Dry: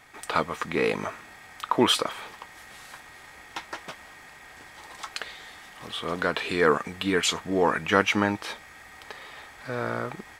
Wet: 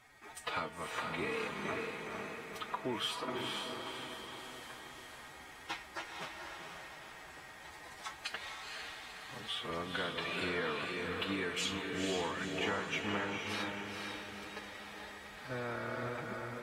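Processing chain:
dynamic equaliser 2,600 Hz, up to +5 dB, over −41 dBFS, Q 1
downward compressor 6 to 1, threshold −26 dBFS, peak gain reduction 13 dB
tuned comb filter 130 Hz, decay 0.69 s, harmonics odd, mix 50%
phase-vocoder stretch with locked phases 1.6×
feedback delay with all-pass diffusion 485 ms, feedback 51%, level −3 dB
level −2.5 dB
AAC 48 kbit/s 44,100 Hz

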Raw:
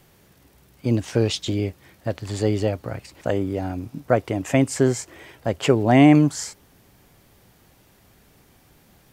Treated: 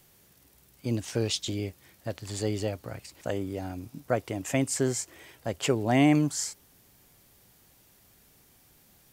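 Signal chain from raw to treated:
high-shelf EQ 3,900 Hz +10.5 dB
level −8.5 dB

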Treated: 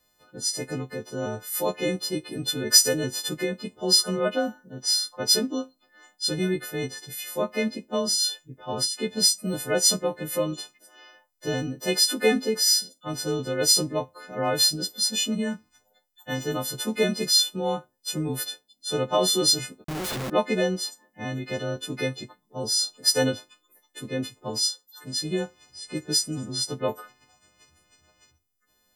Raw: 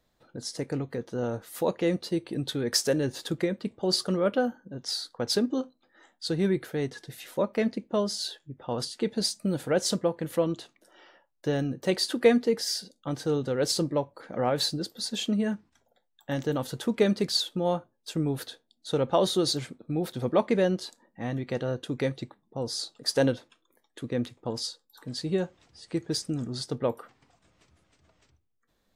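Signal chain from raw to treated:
every partial snapped to a pitch grid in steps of 3 semitones
0:19.84–0:20.30: comparator with hysteresis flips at −39.5 dBFS

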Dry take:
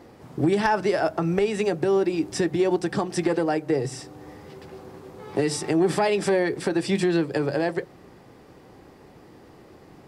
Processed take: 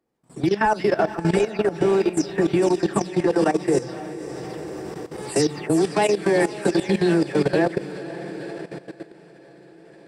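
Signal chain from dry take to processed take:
every frequency bin delayed by itself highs early, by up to 200 ms
noise gate −44 dBFS, range −22 dB
automatic gain control gain up to 10.5 dB
feedback delay with all-pass diffusion 516 ms, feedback 54%, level −8 dB
output level in coarse steps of 15 dB
level −2.5 dB

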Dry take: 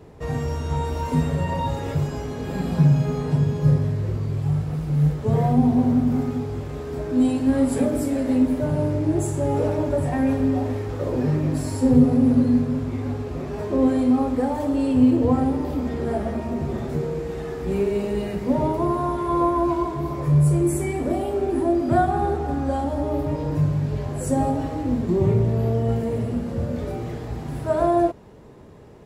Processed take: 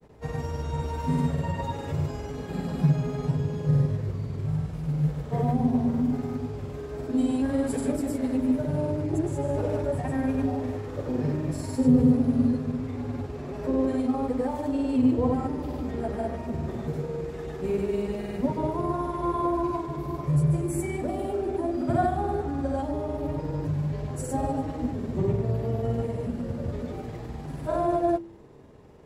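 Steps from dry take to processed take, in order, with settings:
granular cloud, pitch spread up and down by 0 semitones
hum removal 111.9 Hz, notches 3
level −4 dB

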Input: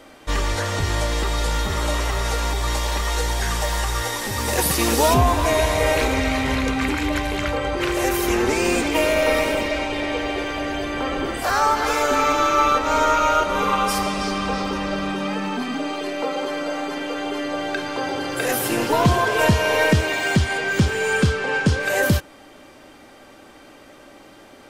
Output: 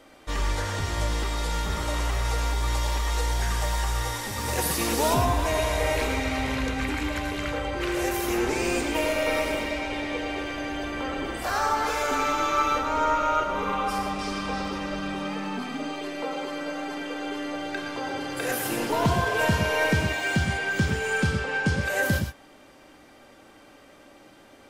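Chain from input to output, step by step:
0:12.81–0:14.19: high-shelf EQ 3,800 Hz −9 dB
reverb whose tail is shaped and stops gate 140 ms rising, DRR 5 dB
level −7 dB

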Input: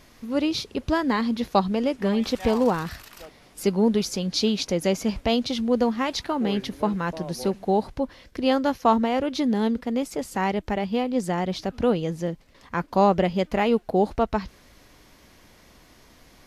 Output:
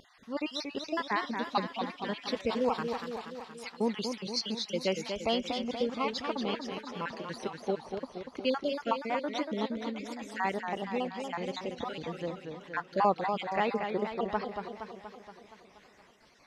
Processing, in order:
time-frequency cells dropped at random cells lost 46%
spectral tilt +4 dB per octave
pitch vibrato 3.4 Hz 26 cents
head-to-tape spacing loss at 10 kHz 27 dB
feedback echo with a swinging delay time 236 ms, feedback 62%, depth 135 cents, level −6.5 dB
level −1.5 dB

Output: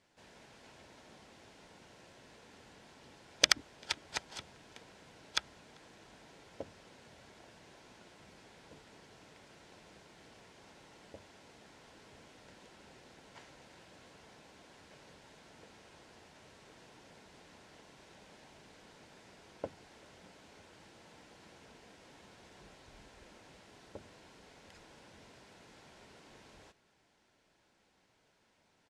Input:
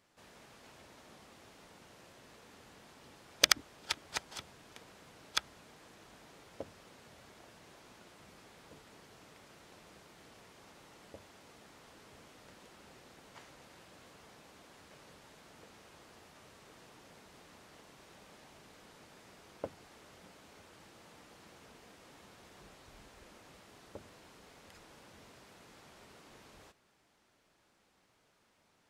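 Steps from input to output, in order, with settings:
low-pass filter 8,400 Hz 12 dB per octave
notch filter 1,200 Hz, Q 8.2
slap from a distant wall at 67 metres, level −29 dB

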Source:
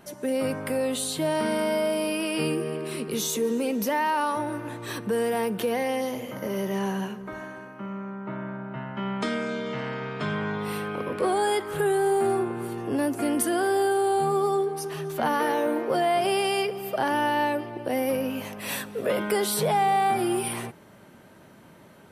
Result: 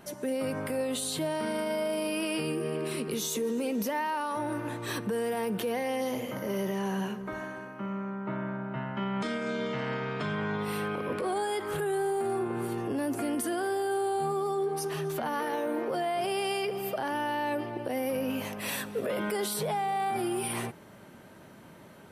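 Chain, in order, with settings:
brickwall limiter −23.5 dBFS, peak gain reduction 9.5 dB

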